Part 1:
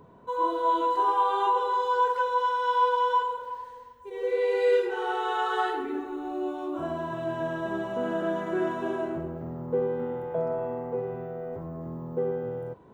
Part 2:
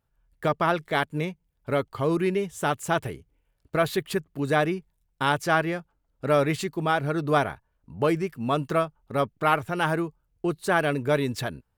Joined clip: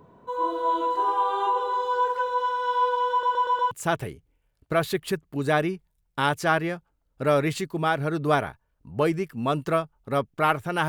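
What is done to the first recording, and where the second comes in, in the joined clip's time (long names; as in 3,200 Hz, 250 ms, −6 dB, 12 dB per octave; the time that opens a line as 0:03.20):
part 1
0:03.11: stutter in place 0.12 s, 5 plays
0:03.71: continue with part 2 from 0:02.74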